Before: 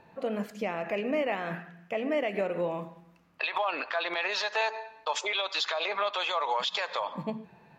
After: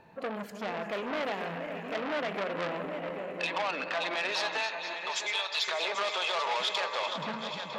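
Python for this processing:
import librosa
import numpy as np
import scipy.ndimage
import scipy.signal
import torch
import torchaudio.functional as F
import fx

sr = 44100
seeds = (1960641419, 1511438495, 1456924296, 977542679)

y = fx.reverse_delay_fb(x, sr, ms=238, feedback_pct=79, wet_db=-10)
y = fx.highpass(y, sr, hz=1400.0, slope=6, at=(4.57, 5.68))
y = y + 10.0 ** (-10.0 / 20.0) * np.pad(y, (int(788 * sr / 1000.0), 0))[:len(y)]
y = fx.transformer_sat(y, sr, knee_hz=2300.0)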